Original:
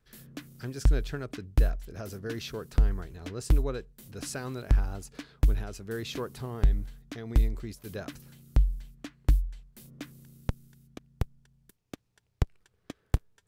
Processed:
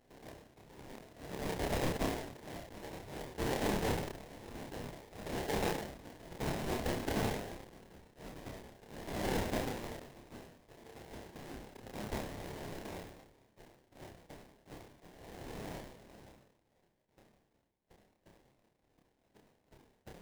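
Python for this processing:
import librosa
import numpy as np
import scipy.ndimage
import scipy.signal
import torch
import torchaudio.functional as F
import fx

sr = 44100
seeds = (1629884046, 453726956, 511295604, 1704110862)

y = fx.lower_of_two(x, sr, delay_ms=8.6)
y = scipy.signal.sosfilt(scipy.signal.butter(2, 1000.0, 'highpass', fs=sr, output='sos'), y)
y = fx.high_shelf(y, sr, hz=8000.0, db=10.0)
y = fx.level_steps(y, sr, step_db=12)
y = fx.auto_swell(y, sr, attack_ms=387.0)
y = fx.stretch_vocoder(y, sr, factor=1.5)
y = fx.sample_hold(y, sr, seeds[0], rate_hz=1300.0, jitter_pct=20)
y = fx.doubler(y, sr, ms=29.0, db=-4)
y = fx.sustainer(y, sr, db_per_s=64.0)
y = y * 10.0 ** (14.5 / 20.0)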